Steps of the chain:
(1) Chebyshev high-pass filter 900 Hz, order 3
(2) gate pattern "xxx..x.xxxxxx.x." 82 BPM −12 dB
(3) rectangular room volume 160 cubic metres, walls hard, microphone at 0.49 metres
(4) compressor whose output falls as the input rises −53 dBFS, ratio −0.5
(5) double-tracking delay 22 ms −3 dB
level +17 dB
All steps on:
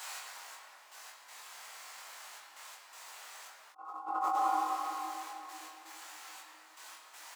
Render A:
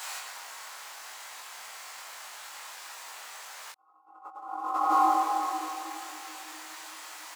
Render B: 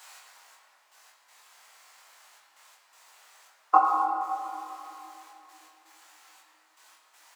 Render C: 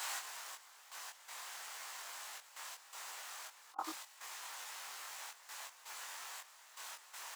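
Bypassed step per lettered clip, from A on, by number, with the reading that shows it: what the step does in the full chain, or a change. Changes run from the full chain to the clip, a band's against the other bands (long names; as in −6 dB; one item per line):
2, change in crest factor +2.0 dB
4, change in crest factor +9.0 dB
3, change in momentary loudness spread −14 LU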